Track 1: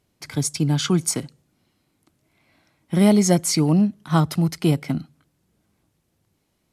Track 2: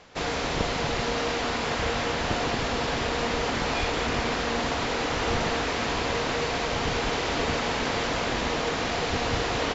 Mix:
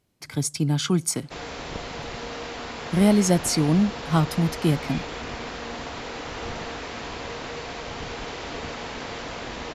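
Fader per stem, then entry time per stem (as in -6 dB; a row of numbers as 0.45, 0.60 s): -2.5, -7.0 dB; 0.00, 1.15 s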